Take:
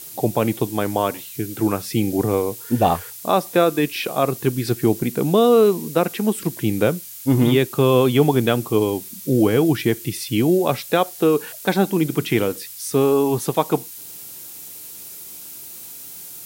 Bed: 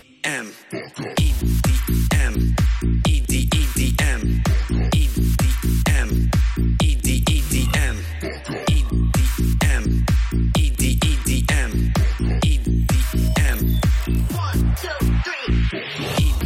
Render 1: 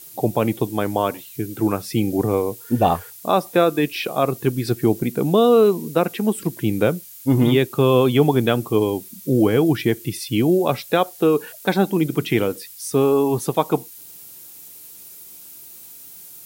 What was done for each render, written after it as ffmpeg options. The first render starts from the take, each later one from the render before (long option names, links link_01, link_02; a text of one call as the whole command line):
ffmpeg -i in.wav -af "afftdn=noise_reduction=6:noise_floor=-37" out.wav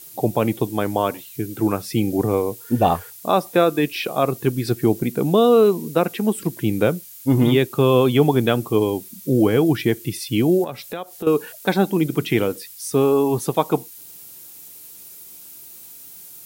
ffmpeg -i in.wav -filter_complex "[0:a]asettb=1/sr,asplit=3[link_01][link_02][link_03];[link_01]atrim=end=10.644[link_04];[link_02]atrim=start=10.64:end=11.27,asetpts=PTS-STARTPTS,afade=type=in:duration=0.004:curve=qsin,afade=type=out:start_time=0.626:duration=0.004:curve=qsin,acompressor=threshold=-31dB:ratio=2.5:attack=3.2:release=140:knee=1:detection=peak[link_05];[link_03]atrim=start=11.266[link_06];[link_04][link_05]acrossfade=duration=0.004:curve1=hsin:curve2=qsin[link_07];[link_07][link_06]acrossfade=duration=0.004:curve1=qsin:curve2=hsin" out.wav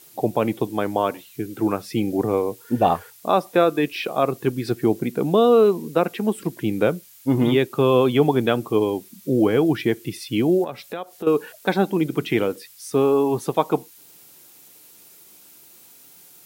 ffmpeg -i in.wav -af "highpass=frequency=190:poles=1,highshelf=frequency=5200:gain=-9" out.wav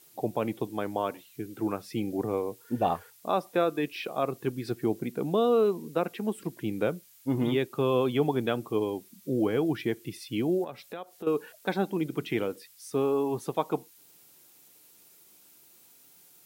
ffmpeg -i in.wav -af "volume=-8.5dB" out.wav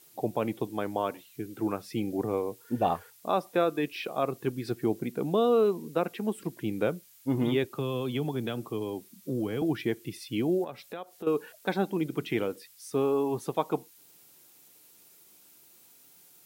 ffmpeg -i in.wav -filter_complex "[0:a]asettb=1/sr,asplit=3[link_01][link_02][link_03];[link_01]atrim=end=7.644[link_04];[link_02]atrim=start=7.64:end=9.62,asetpts=PTS-STARTPTS,afade=type=in:duration=0.004:curve=qsin,afade=type=out:start_time=1.976:duration=0.004:curve=qsin,acrossover=split=220|3000[link_05][link_06][link_07];[link_06]acompressor=threshold=-31dB:ratio=6:attack=3.2:release=140:knee=2.83:detection=peak[link_08];[link_05][link_08][link_07]amix=inputs=3:normalize=0[link_09];[link_03]atrim=start=9.616[link_10];[link_04][link_09]acrossfade=duration=0.004:curve1=hsin:curve2=qsin[link_11];[link_11][link_10]acrossfade=duration=0.004:curve1=qsin:curve2=hsin" out.wav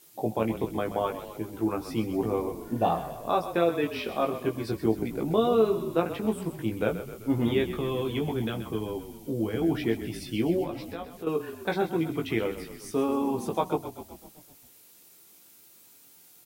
ffmpeg -i in.wav -filter_complex "[0:a]asplit=2[link_01][link_02];[link_02]adelay=18,volume=-4dB[link_03];[link_01][link_03]amix=inputs=2:normalize=0,asplit=8[link_04][link_05][link_06][link_07][link_08][link_09][link_10][link_11];[link_05]adelay=129,afreqshift=-30,volume=-11.5dB[link_12];[link_06]adelay=258,afreqshift=-60,volume=-15.8dB[link_13];[link_07]adelay=387,afreqshift=-90,volume=-20.1dB[link_14];[link_08]adelay=516,afreqshift=-120,volume=-24.4dB[link_15];[link_09]adelay=645,afreqshift=-150,volume=-28.7dB[link_16];[link_10]adelay=774,afreqshift=-180,volume=-33dB[link_17];[link_11]adelay=903,afreqshift=-210,volume=-37.3dB[link_18];[link_04][link_12][link_13][link_14][link_15][link_16][link_17][link_18]amix=inputs=8:normalize=0" out.wav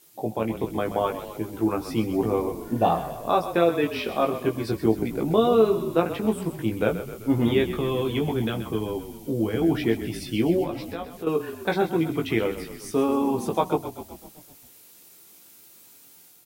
ffmpeg -i in.wav -af "dynaudnorm=framelen=450:gausssize=3:maxgain=4dB" out.wav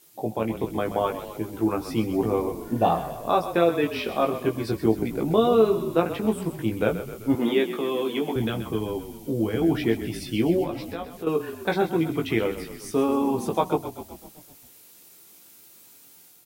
ffmpeg -i in.wav -filter_complex "[0:a]asettb=1/sr,asplit=3[link_01][link_02][link_03];[link_01]atrim=end=7.354[link_04];[link_02]atrim=start=7.35:end=8.36,asetpts=PTS-STARTPTS,afade=type=in:duration=0.004:curve=qsin,afade=type=out:start_time=1.006:duration=0.004:curve=qsin,highpass=frequency=220:width=0.5412,highpass=frequency=220:width=1.3066[link_05];[link_03]atrim=start=8.356[link_06];[link_04][link_05]acrossfade=duration=0.004:curve1=hsin:curve2=qsin[link_07];[link_07][link_06]acrossfade=duration=0.004:curve1=qsin:curve2=hsin" out.wav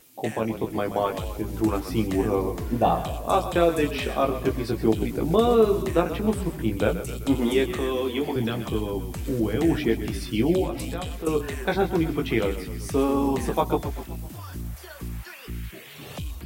ffmpeg -i in.wav -i bed.wav -filter_complex "[1:a]volume=-16dB[link_01];[0:a][link_01]amix=inputs=2:normalize=0" out.wav